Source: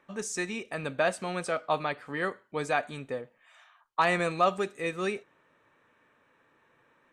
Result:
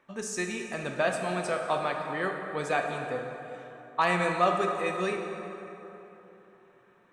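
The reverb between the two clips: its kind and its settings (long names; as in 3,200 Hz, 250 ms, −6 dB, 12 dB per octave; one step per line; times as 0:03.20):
dense smooth reverb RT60 3.5 s, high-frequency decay 0.55×, DRR 2.5 dB
level −1 dB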